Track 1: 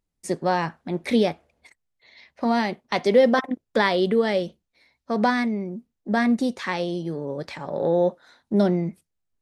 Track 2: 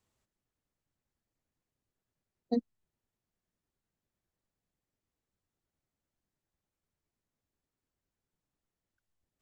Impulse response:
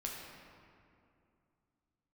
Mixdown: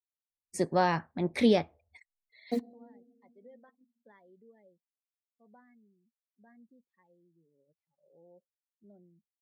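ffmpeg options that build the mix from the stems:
-filter_complex "[0:a]equalizer=frequency=91:width=3.7:gain=11.5,adelay=300,volume=-3.5dB[link_01];[1:a]lowshelf=frequency=150:gain=-11.5,acrusher=bits=7:mix=0:aa=0.000001,volume=0dB,asplit=3[link_02][link_03][link_04];[link_03]volume=-14.5dB[link_05];[link_04]apad=whole_len=428517[link_06];[link_01][link_06]sidechaingate=range=-35dB:threshold=-32dB:ratio=16:detection=peak[link_07];[2:a]atrim=start_sample=2205[link_08];[link_05][link_08]afir=irnorm=-1:irlink=0[link_09];[link_07][link_02][link_09]amix=inputs=3:normalize=0,afftdn=noise_reduction=27:noise_floor=-57"

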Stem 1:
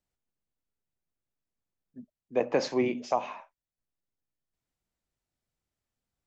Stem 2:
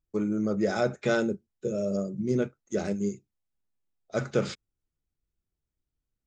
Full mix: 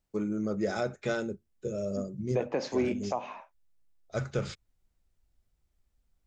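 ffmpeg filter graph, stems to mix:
ffmpeg -i stem1.wav -i stem2.wav -filter_complex "[0:a]lowshelf=frequency=450:gain=4,volume=2dB[link_01];[1:a]asubboost=boost=8:cutoff=86,volume=-3dB[link_02];[link_01][link_02]amix=inputs=2:normalize=0,alimiter=limit=-19dB:level=0:latency=1:release=491" out.wav

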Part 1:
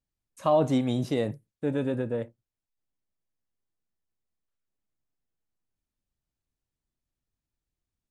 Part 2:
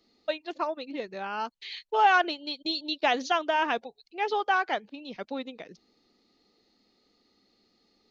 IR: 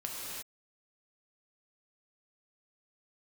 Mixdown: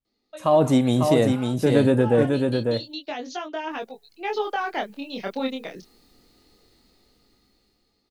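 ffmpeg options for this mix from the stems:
-filter_complex "[0:a]dynaudnorm=framelen=190:gausssize=5:maxgain=8dB,volume=-1.5dB,asplit=3[link_01][link_02][link_03];[link_01]atrim=end=2.93,asetpts=PTS-STARTPTS,afade=type=out:start_time=2.926:duration=0.004:curve=hsin[link_04];[link_02]atrim=start=2.93:end=3.7,asetpts=PTS-STARTPTS,volume=0[link_05];[link_03]atrim=start=3.7,asetpts=PTS-STARTPTS,afade=type=in:duration=0.004:curve=hsin[link_06];[link_04][link_05][link_06]concat=n=3:v=0:a=1,asplit=2[link_07][link_08];[link_08]volume=-6dB[link_09];[1:a]acrossover=split=420[link_10][link_11];[link_11]acompressor=threshold=-31dB:ratio=5[link_12];[link_10][link_12]amix=inputs=2:normalize=0,flanger=delay=19:depth=7.9:speed=0.27,adelay=50,volume=-5.5dB[link_13];[link_09]aecho=0:1:548:1[link_14];[link_07][link_13][link_14]amix=inputs=3:normalize=0,dynaudnorm=framelen=340:gausssize=11:maxgain=16.5dB,adynamicequalizer=threshold=0.00282:dfrequency=7300:dqfactor=0.7:tfrequency=7300:tqfactor=0.7:attack=5:release=100:ratio=0.375:range=4:mode=boostabove:tftype=highshelf"

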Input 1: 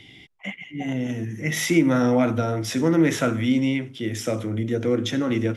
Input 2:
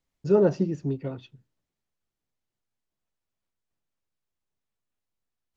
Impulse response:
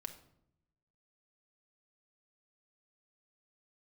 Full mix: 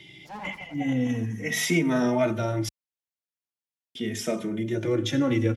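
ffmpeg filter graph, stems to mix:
-filter_complex "[0:a]asplit=2[link_01][link_02];[link_02]adelay=2.9,afreqshift=-0.43[link_03];[link_01][link_03]amix=inputs=2:normalize=1,volume=2dB,asplit=3[link_04][link_05][link_06];[link_04]atrim=end=2.69,asetpts=PTS-STARTPTS,afade=type=out:start_time=2.686:duration=0.004:curve=hsin[link_07];[link_05]atrim=start=2.69:end=3.95,asetpts=PTS-STARTPTS,volume=0[link_08];[link_06]atrim=start=3.95,asetpts=PTS-STARTPTS,afade=type=in:duration=0.004:curve=hsin[link_09];[link_07][link_08][link_09]concat=n=3:v=0:a=1,asplit=2[link_10][link_11];[1:a]highpass=460,acompressor=threshold=-37dB:ratio=1.5,aeval=exprs='abs(val(0))':channel_layout=same,volume=-3.5dB,asplit=2[link_12][link_13];[link_13]volume=-8.5dB[link_14];[link_11]apad=whole_len=245325[link_15];[link_12][link_15]sidechaincompress=threshold=-32dB:ratio=8:attack=16:release=168[link_16];[link_14]aecho=0:1:85|170|255|340|425|510|595:1|0.51|0.26|0.133|0.0677|0.0345|0.0176[link_17];[link_10][link_16][link_17]amix=inputs=3:normalize=0,highpass=51,equalizer=frequency=1300:width=3:gain=-3"

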